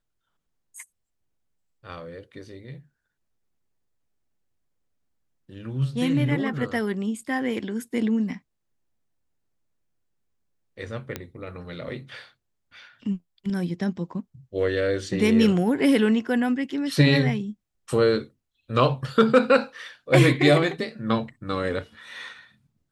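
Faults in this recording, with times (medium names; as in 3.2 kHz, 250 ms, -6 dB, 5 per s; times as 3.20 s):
11.16 s: pop -14 dBFS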